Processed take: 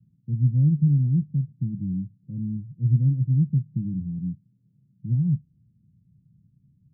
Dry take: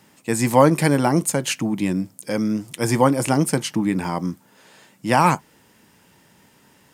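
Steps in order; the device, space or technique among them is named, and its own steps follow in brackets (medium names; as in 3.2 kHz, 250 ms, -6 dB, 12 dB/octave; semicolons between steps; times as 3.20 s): the neighbour's flat through the wall (low-pass 160 Hz 24 dB/octave; peaking EQ 130 Hz +7 dB 0.87 oct)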